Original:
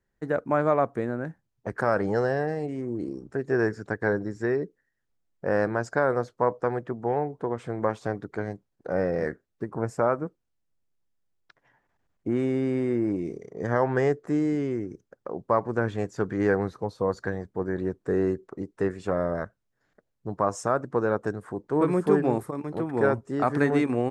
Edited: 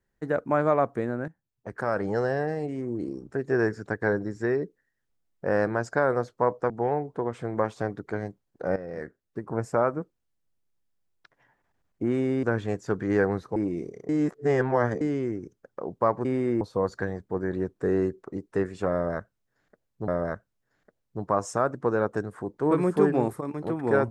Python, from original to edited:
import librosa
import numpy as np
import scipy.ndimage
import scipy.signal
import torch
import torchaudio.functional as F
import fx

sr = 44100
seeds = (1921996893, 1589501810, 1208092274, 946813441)

y = fx.edit(x, sr, fx.fade_in_from(start_s=1.28, length_s=1.57, curve='qsin', floor_db=-13.0),
    fx.cut(start_s=6.7, length_s=0.25),
    fx.fade_in_from(start_s=9.01, length_s=0.84, floor_db=-14.0),
    fx.swap(start_s=12.68, length_s=0.36, other_s=15.73, other_length_s=1.13),
    fx.reverse_span(start_s=13.57, length_s=0.92),
    fx.repeat(start_s=19.18, length_s=1.15, count=2), tone=tone)